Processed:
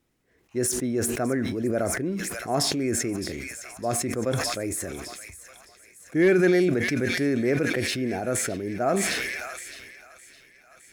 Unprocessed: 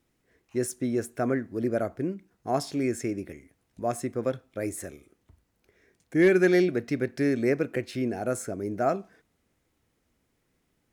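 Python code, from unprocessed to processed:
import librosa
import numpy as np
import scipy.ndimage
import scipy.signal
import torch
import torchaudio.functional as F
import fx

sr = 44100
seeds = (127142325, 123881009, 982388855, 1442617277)

p1 = x + fx.echo_wet_highpass(x, sr, ms=612, feedback_pct=72, hz=2200.0, wet_db=-9, dry=0)
y = fx.sustainer(p1, sr, db_per_s=24.0)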